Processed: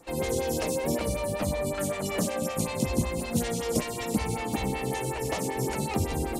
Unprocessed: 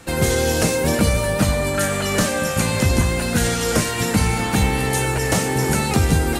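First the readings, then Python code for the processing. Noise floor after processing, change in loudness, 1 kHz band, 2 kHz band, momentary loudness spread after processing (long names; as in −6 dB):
−34 dBFS, −10.0 dB, −9.0 dB, −14.0 dB, 2 LU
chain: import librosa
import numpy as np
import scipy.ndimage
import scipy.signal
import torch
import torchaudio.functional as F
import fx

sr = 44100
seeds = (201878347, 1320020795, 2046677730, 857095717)

y = fx.peak_eq(x, sr, hz=1500.0, db=-10.0, octaves=0.47)
y = fx.rev_schroeder(y, sr, rt60_s=3.7, comb_ms=30, drr_db=14.5)
y = fx.stagger_phaser(y, sr, hz=5.3)
y = y * 10.0 ** (-6.0 / 20.0)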